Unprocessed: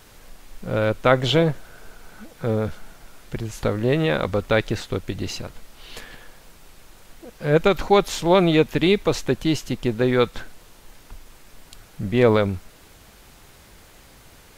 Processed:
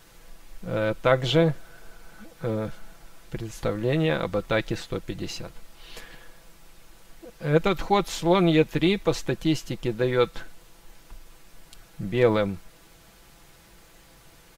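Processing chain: comb 6 ms, depth 49%; gain -5 dB

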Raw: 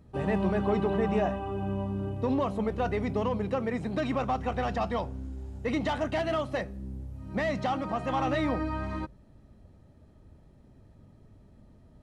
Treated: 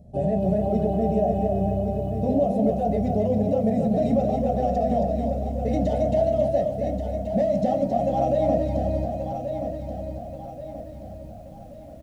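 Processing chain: EQ curve 140 Hz 0 dB, 210 Hz -2 dB, 410 Hz -9 dB, 700 Hz +9 dB, 1000 Hz -29 dB, 6600 Hz -6 dB; limiter -24.5 dBFS, peak gain reduction 9.5 dB; feedback echo 1.13 s, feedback 43%, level -8 dB; on a send at -4 dB: reverb RT60 0.25 s, pre-delay 3 ms; on the sum: lo-fi delay 0.271 s, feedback 35%, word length 11-bit, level -5 dB; gain +7 dB

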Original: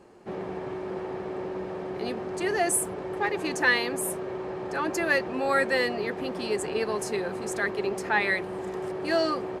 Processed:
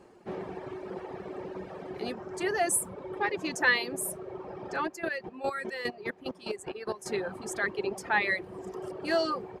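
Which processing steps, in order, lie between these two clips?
4.83–7.06 chopper 4.9 Hz, depth 65%, duty 25%; reverb removal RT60 1.8 s; gain -1.5 dB

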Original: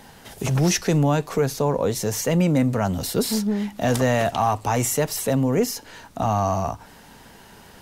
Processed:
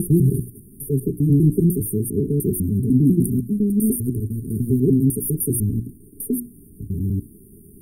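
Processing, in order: slices in reverse order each 0.1 s, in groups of 8; brick-wall FIR band-stop 430–8700 Hz; notches 60/120/180/240/300/360 Hz; gain +5.5 dB

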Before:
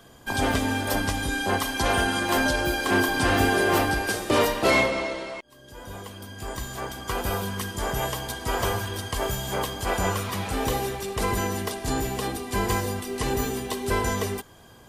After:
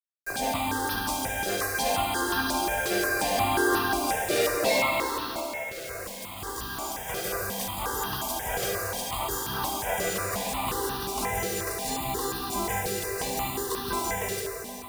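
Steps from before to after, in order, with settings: low shelf 160 Hz -12 dB; notch 3100 Hz, Q 11; in parallel at -1.5 dB: limiter -29.5 dBFS, peak gain reduction 19 dB; on the sum: bit-crush 6-bit; on a send: thin delay 71 ms, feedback 81%, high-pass 3000 Hz, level -10 dB; on the sum: plate-style reverb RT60 3.7 s, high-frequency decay 0.85×, DRR 1 dB; step phaser 5.6 Hz 260–2200 Hz; gain -2.5 dB

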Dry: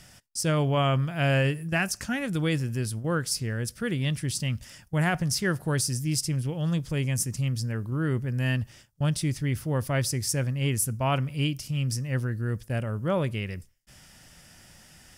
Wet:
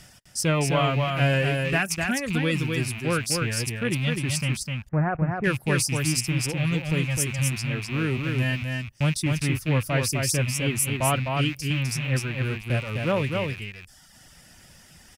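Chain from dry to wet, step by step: rattling part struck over -33 dBFS, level -23 dBFS; 4.63–5.44 LPF 1400 Hz 24 dB/oct; reverb removal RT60 1.1 s; echo 0.255 s -4 dB; gain +2.5 dB

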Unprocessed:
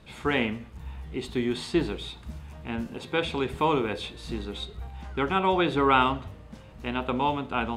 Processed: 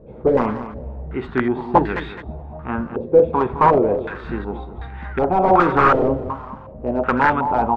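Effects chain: wrapped overs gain 17 dB; feedback echo 0.212 s, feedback 31%, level -12 dB; stepped low-pass 2.7 Hz 500–1800 Hz; gain +6.5 dB

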